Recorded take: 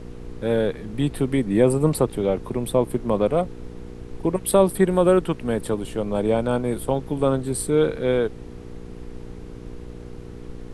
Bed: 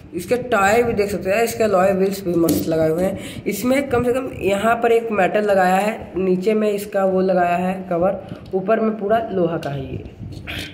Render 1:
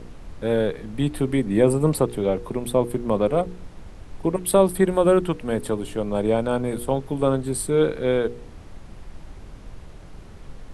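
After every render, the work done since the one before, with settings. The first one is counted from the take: de-hum 60 Hz, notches 8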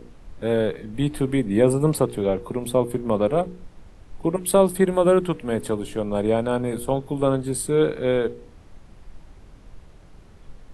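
noise print and reduce 6 dB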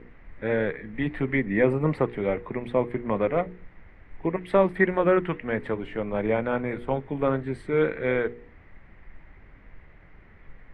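synth low-pass 2000 Hz, resonance Q 5.9; flange 1.6 Hz, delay 0.7 ms, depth 4 ms, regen -82%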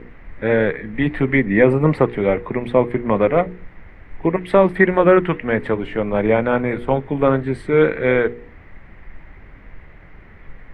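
gain +8.5 dB; limiter -1 dBFS, peak gain reduction 2.5 dB

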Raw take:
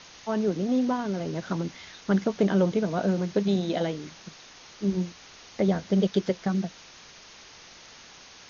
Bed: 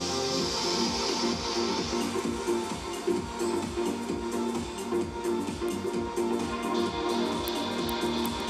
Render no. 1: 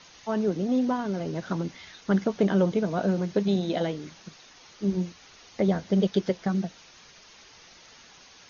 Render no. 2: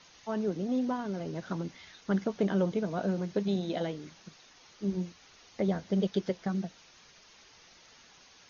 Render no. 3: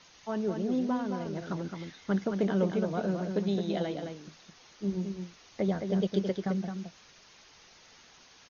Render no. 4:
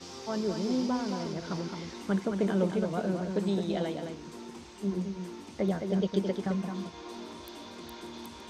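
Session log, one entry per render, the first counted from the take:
denoiser 6 dB, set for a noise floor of -50 dBFS
gain -5.5 dB
outdoor echo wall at 37 m, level -6 dB
add bed -14.5 dB

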